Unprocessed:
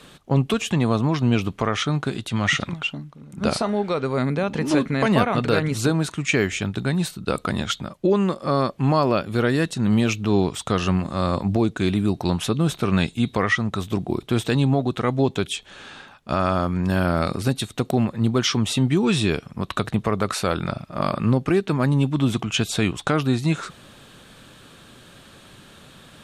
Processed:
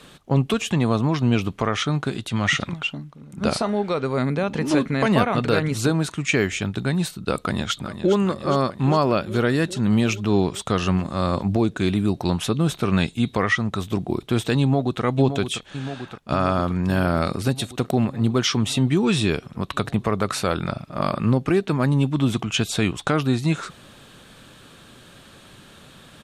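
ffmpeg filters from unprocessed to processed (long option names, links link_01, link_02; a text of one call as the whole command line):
ffmpeg -i in.wav -filter_complex "[0:a]asplit=2[link_01][link_02];[link_02]afade=type=in:start_time=7.36:duration=0.01,afade=type=out:start_time=8.15:duration=0.01,aecho=0:1:410|820|1230|1640|2050|2460|2870|3280|3690|4100:0.316228|0.221359|0.154952|0.108466|0.0759263|0.0531484|0.0372039|0.0260427|0.0182299|0.0127609[link_03];[link_01][link_03]amix=inputs=2:normalize=0,asplit=2[link_04][link_05];[link_05]afade=type=in:start_time=14.6:duration=0.01,afade=type=out:start_time=15.03:duration=0.01,aecho=0:1:570|1140|1710|2280|2850|3420|3990|4560|5130|5700|6270|6840:0.375837|0.281878|0.211409|0.158556|0.118917|0.089188|0.066891|0.0501682|0.0376262|0.0282196|0.0211647|0.0158735[link_06];[link_04][link_06]amix=inputs=2:normalize=0" out.wav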